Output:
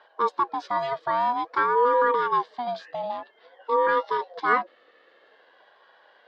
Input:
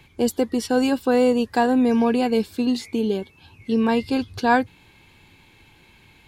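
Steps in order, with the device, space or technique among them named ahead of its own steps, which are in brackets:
voice changer toy (ring modulator whose carrier an LFO sweeps 570 Hz, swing 30%, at 0.51 Hz; loudspeaker in its box 420–4,300 Hz, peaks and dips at 490 Hz +9 dB, 1,100 Hz +9 dB, 1,700 Hz +9 dB, 2,500 Hz −8 dB)
level −4.5 dB

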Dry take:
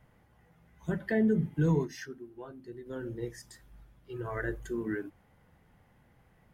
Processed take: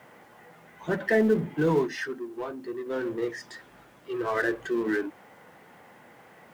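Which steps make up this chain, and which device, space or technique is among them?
phone line with mismatched companding (band-pass filter 330–3,300 Hz; mu-law and A-law mismatch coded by mu)
level +8 dB

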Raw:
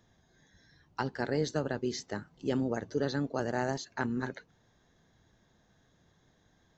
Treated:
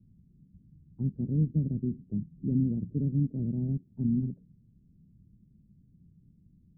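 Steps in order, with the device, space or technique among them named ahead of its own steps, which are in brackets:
the neighbour's flat through the wall (low-pass filter 230 Hz 24 dB per octave; parametric band 180 Hz +4.5 dB 0.61 octaves)
level +8.5 dB

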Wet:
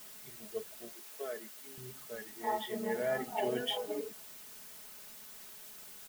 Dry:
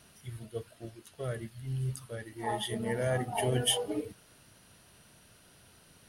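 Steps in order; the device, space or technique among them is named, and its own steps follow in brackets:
wax cylinder (band-pass filter 250–2,600 Hz; tape wow and flutter; white noise bed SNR 13 dB)
0:00.93–0:01.78: high-pass filter 260 Hz 24 dB per octave
high-shelf EQ 9,200 Hz +5 dB
comb filter 4.7 ms, depth 62%
level −3.5 dB

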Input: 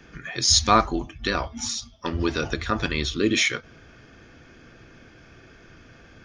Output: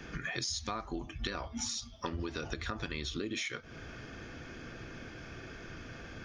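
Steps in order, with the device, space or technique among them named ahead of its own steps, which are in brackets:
serial compression, leveller first (downward compressor 3 to 1, threshold −24 dBFS, peak gain reduction 9.5 dB; downward compressor 6 to 1, threshold −38 dBFS, peak gain reduction 16 dB)
level +3 dB

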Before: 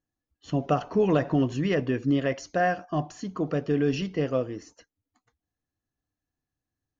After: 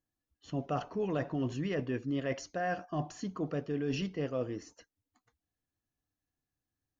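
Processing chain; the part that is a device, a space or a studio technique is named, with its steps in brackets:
compression on the reversed sound (reversed playback; downward compressor, threshold −27 dBFS, peak gain reduction 9 dB; reversed playback)
level −3 dB

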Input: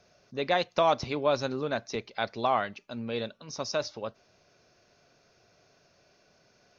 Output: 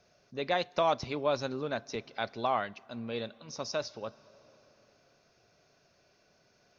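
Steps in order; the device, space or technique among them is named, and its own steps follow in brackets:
compressed reverb return (on a send at −13 dB: convolution reverb RT60 2.6 s, pre-delay 17 ms + downward compressor 10 to 1, threshold −39 dBFS, peak gain reduction 19.5 dB)
on the sum: level −3.5 dB

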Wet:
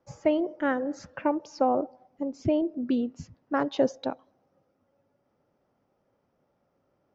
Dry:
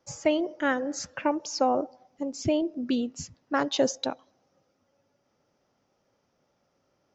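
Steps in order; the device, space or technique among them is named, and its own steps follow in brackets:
through cloth (low-pass filter 6,600 Hz 12 dB per octave; high-shelf EQ 2,700 Hz −16 dB)
level +1 dB

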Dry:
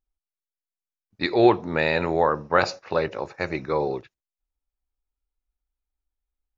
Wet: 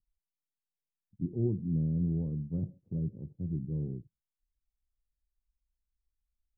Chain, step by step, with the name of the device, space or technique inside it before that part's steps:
the neighbour's flat through the wall (low-pass filter 220 Hz 24 dB per octave; parametric band 160 Hz +5 dB 0.51 octaves)

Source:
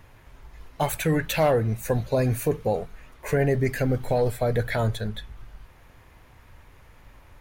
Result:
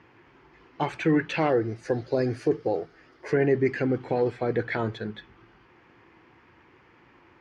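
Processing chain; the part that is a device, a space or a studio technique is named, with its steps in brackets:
0:01.49–0:03.33: thirty-one-band graphic EQ 200 Hz −11 dB, 630 Hz +3 dB, 1,000 Hz −8 dB, 2,500 Hz −8 dB, 5,000 Hz +10 dB, 10,000 Hz +10 dB
kitchen radio (loudspeaker in its box 180–4,500 Hz, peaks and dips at 340 Hz +10 dB, 610 Hz −9 dB, 3,800 Hz −9 dB)

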